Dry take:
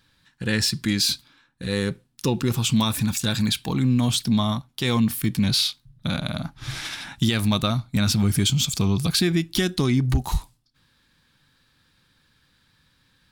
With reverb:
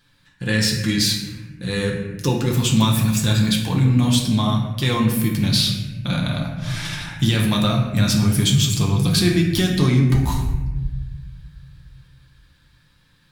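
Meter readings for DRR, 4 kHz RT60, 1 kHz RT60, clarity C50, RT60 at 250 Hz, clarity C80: -1.0 dB, 0.85 s, 1.1 s, 4.0 dB, 2.3 s, 6.5 dB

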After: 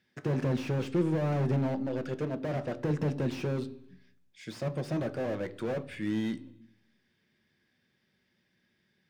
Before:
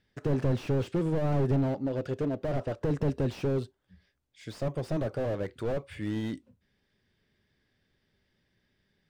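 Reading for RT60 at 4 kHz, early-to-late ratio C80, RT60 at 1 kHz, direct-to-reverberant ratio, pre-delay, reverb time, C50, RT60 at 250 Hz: 1.2 s, 21.0 dB, 0.70 s, 11.0 dB, 3 ms, 0.70 s, 18.5 dB, 0.95 s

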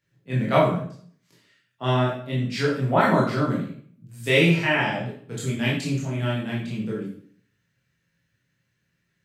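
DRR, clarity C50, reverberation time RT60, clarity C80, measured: -6.5 dB, 3.5 dB, 0.55 s, 7.5 dB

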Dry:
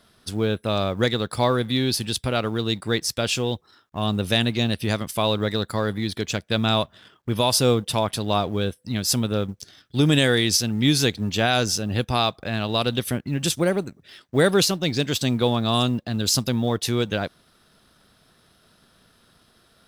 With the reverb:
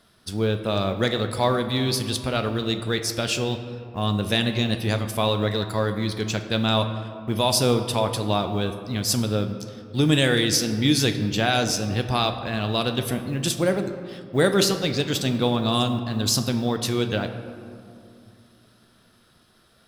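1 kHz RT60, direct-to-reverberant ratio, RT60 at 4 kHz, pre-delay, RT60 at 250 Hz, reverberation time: 2.3 s, 6.5 dB, 1.1 s, 5 ms, 3.2 s, 2.4 s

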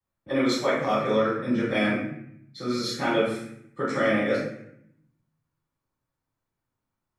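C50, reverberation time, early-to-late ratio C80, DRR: 1.5 dB, 0.75 s, 5.0 dB, -13.0 dB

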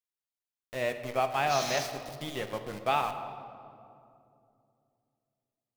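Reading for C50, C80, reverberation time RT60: 9.0 dB, 10.0 dB, 2.6 s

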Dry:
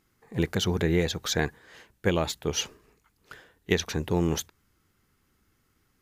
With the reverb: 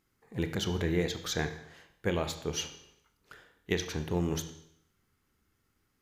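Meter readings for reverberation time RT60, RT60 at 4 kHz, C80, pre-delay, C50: 0.70 s, 0.70 s, 13.0 dB, 25 ms, 10.5 dB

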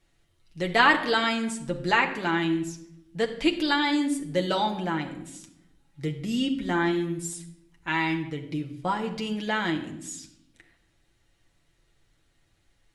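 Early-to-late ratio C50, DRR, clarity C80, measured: 10.5 dB, 1.5 dB, 13.5 dB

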